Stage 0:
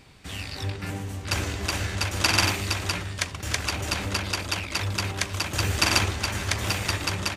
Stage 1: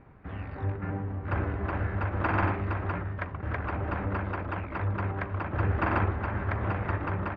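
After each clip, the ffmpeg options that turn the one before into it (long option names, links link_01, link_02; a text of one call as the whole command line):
ffmpeg -i in.wav -af "lowpass=frequency=1600:width=0.5412,lowpass=frequency=1600:width=1.3066" out.wav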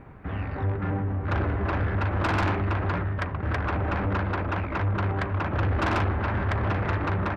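ffmpeg -i in.wav -af "asoftclip=type=tanh:threshold=-28dB,volume=7.5dB" out.wav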